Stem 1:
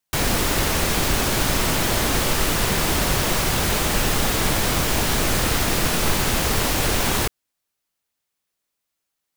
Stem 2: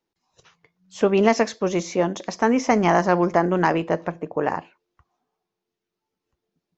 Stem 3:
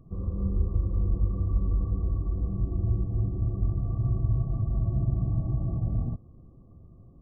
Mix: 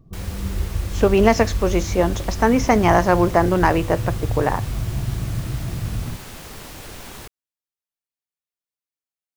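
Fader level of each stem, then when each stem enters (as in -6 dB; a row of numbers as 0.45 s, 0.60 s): -16.5 dB, +2.5 dB, +1.5 dB; 0.00 s, 0.00 s, 0.00 s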